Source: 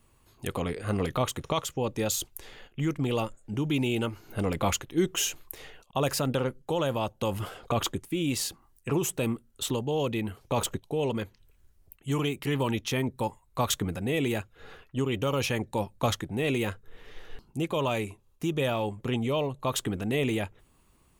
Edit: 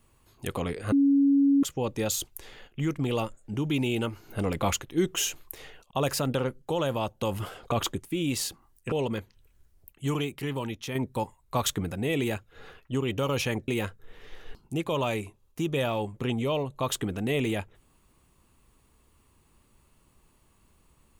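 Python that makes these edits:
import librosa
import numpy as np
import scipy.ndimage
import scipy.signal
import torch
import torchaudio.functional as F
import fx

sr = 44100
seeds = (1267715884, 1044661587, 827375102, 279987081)

y = fx.edit(x, sr, fx.bleep(start_s=0.92, length_s=0.71, hz=279.0, db=-17.5),
    fx.cut(start_s=8.92, length_s=2.04),
    fx.fade_out_to(start_s=12.13, length_s=0.86, curve='qua', floor_db=-6.0),
    fx.cut(start_s=15.72, length_s=0.8), tone=tone)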